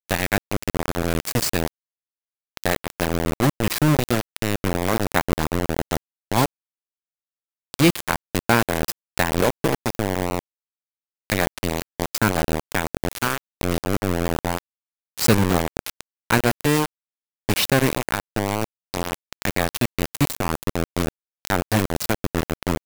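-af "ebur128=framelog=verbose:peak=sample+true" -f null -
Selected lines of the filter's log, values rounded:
Integrated loudness:
  I:         -23.6 LUFS
  Threshold: -33.8 LUFS
Loudness range:
  LRA:         3.1 LU
  Threshold: -44.1 LUFS
  LRA low:   -25.8 LUFS
  LRA high:  -22.7 LUFS
Sample peak:
  Peak:       -1.6 dBFS
True peak:
  Peak:       -1.4 dBFS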